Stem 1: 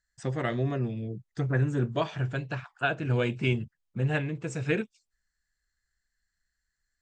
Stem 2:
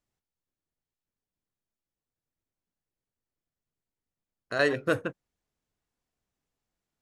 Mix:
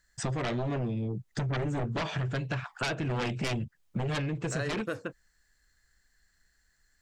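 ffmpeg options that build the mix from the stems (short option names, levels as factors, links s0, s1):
-filter_complex "[0:a]aeval=exprs='0.237*sin(PI/2*4.47*val(0)/0.237)':c=same,volume=0.531[s0];[1:a]volume=1[s1];[s0][s1]amix=inputs=2:normalize=0,acompressor=threshold=0.0316:ratio=6"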